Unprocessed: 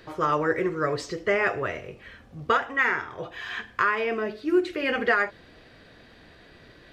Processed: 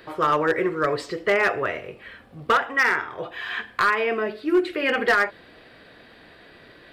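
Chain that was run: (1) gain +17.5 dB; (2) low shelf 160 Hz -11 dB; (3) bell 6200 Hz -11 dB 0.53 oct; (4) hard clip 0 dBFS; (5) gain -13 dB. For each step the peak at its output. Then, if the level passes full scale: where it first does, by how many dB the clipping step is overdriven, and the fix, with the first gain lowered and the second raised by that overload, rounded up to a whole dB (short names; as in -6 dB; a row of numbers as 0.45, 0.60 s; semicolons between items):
+8.0, +8.0, +8.0, 0.0, -13.0 dBFS; step 1, 8.0 dB; step 1 +9.5 dB, step 5 -5 dB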